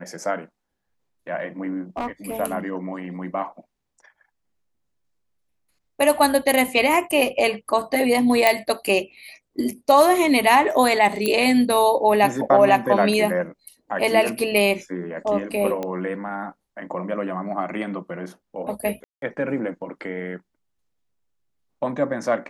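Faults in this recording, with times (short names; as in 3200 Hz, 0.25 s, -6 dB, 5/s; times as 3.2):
1.97–2.36 clipped -21.5 dBFS
8.47 pop -2 dBFS
11.26 pop -8 dBFS
15.83 pop -15 dBFS
19.04–19.22 gap 0.182 s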